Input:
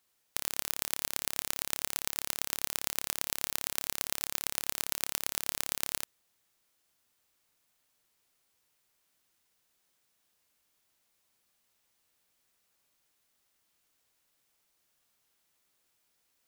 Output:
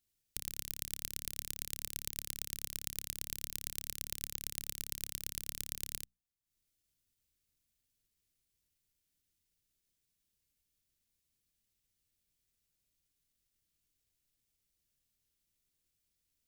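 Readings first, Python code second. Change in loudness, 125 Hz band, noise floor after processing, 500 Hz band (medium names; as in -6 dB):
-7.0 dB, +1.5 dB, -84 dBFS, -12.0 dB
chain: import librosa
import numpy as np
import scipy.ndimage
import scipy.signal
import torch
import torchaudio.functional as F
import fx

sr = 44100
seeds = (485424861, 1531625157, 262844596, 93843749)

y = fx.tone_stack(x, sr, knobs='10-0-1')
y = fx.hum_notches(y, sr, base_hz=60, count=4)
y = fx.transient(y, sr, attack_db=1, sustain_db=-12)
y = y * 10.0 ** (13.0 / 20.0)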